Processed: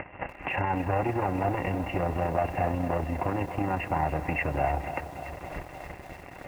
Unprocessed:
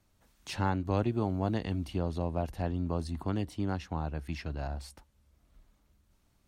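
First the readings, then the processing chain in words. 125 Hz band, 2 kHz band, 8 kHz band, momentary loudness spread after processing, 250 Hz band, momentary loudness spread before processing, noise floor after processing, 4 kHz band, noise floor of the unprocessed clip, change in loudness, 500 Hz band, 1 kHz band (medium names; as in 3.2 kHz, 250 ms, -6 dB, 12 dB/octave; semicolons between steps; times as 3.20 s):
+2.0 dB, +11.5 dB, no reading, 12 LU, +2.0 dB, 8 LU, -46 dBFS, -0.5 dB, -70 dBFS, +4.0 dB, +7.0 dB, +10.5 dB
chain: high-pass 110 Hz 6 dB/octave; dynamic bell 970 Hz, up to +4 dB, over -47 dBFS, Q 2.9; in parallel at -0.5 dB: upward compressor, threshold -33 dBFS; on the sum: waveshaping leveller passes 5; compression 20:1, threshold -25 dBFS, peak gain reduction 13.5 dB; rippled Chebyshev low-pass 2.8 kHz, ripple 9 dB; comb of notches 220 Hz; AM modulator 31 Hz, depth 20%; on a send: feedback echo behind a band-pass 228 ms, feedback 61%, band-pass 780 Hz, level -16 dB; on the sum: bit-crushed delay 290 ms, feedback 80%, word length 9-bit, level -12.5 dB; trim +8 dB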